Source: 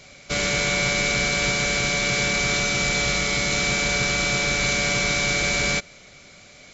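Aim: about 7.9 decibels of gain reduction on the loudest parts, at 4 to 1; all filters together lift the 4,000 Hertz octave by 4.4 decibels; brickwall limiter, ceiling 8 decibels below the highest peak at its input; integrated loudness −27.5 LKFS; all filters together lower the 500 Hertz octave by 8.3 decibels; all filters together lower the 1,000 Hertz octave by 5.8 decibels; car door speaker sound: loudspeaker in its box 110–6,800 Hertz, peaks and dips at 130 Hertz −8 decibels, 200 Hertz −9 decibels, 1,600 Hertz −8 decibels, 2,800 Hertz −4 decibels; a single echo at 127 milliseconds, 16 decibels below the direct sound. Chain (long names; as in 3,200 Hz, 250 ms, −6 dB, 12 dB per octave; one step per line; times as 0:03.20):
parametric band 500 Hz −9 dB
parametric band 1,000 Hz −3.5 dB
parametric band 4,000 Hz +6.5 dB
downward compressor 4 to 1, threshold −27 dBFS
brickwall limiter −24 dBFS
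loudspeaker in its box 110–6,800 Hz, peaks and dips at 130 Hz −8 dB, 200 Hz −9 dB, 1,600 Hz −8 dB, 2,800 Hz −4 dB
single-tap delay 127 ms −16 dB
level +4.5 dB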